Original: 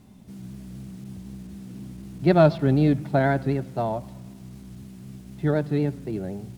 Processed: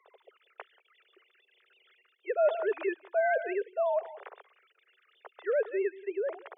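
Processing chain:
three sine waves on the formant tracks
Butterworth high-pass 400 Hz 96 dB per octave
single-tap delay 184 ms −23 dB
reversed playback
downward compressor 4 to 1, threshold −32 dBFS, peak gain reduction 19 dB
reversed playback
level +5 dB

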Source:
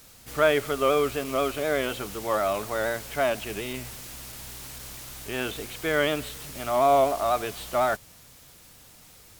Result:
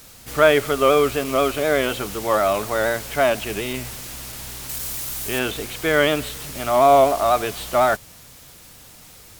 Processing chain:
0:04.69–0:05.39: high-shelf EQ 6,600 Hz +9 dB
level +6.5 dB

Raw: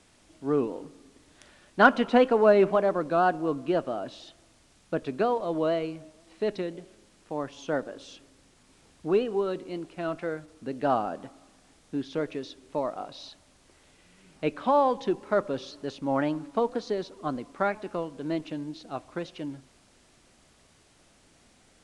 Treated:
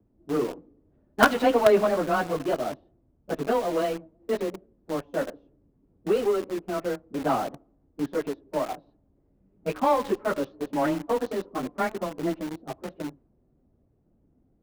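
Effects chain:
frequency shifter +14 Hz
low-pass that shuts in the quiet parts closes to 330 Hz, open at −19 dBFS
time stretch by phase vocoder 0.67×
in parallel at −11 dB: log-companded quantiser 2 bits
on the sum: level +2.5 dB

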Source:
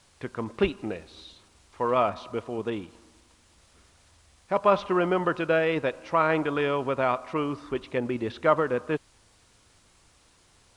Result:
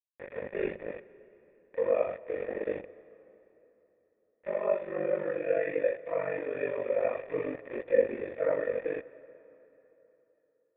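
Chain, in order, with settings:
random phases in long frames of 200 ms
centre clipping without the shift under −31.5 dBFS
speech leveller within 4 dB 0.5 s
formant resonators in series e
hum removal 64.11 Hz, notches 3
ring modulation 24 Hz
on a send: convolution reverb RT60 3.5 s, pre-delay 97 ms, DRR 18 dB
on the sum: level +8 dB

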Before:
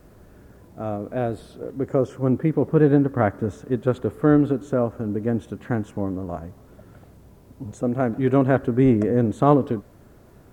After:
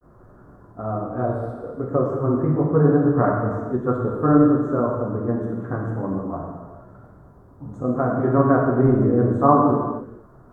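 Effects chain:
high shelf with overshoot 1,800 Hz −13 dB, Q 3
granular cloud 100 ms, spray 11 ms, pitch spread up and down by 0 semitones
reverb whose tail is shaped and stops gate 500 ms falling, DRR −2.5 dB
level −3 dB

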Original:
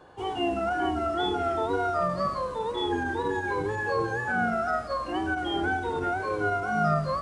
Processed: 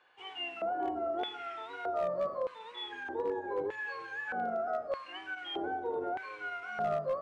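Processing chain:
auto-filter band-pass square 0.81 Hz 540–2,400 Hz
hard clipping −26 dBFS, distortion −27 dB

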